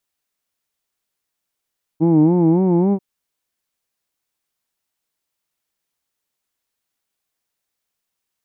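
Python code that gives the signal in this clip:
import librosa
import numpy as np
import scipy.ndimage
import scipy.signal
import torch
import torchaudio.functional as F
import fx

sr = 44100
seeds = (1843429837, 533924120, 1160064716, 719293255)

y = fx.vowel(sr, seeds[0], length_s=0.99, word="who'd", hz=156.0, glide_st=3.5, vibrato_hz=3.6, vibrato_st=1.2)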